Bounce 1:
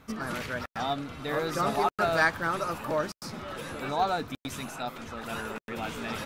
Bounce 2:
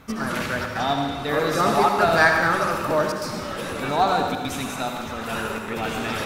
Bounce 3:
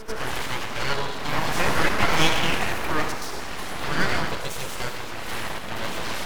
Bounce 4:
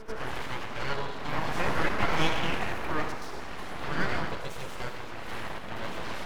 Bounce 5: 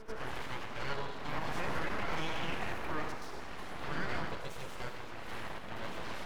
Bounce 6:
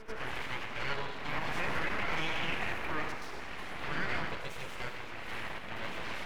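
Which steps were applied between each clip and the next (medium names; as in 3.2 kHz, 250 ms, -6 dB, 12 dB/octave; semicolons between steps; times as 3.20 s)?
reverberation RT60 1.3 s, pre-delay 63 ms, DRR 3 dB; trim +6.5 dB
reverse echo 99 ms -10.5 dB; full-wave rectifier
treble shelf 4.1 kHz -11 dB; trim -5 dB
peak limiter -18 dBFS, peak gain reduction 7 dB; trim -5.5 dB
peaking EQ 2.3 kHz +7 dB 1.1 oct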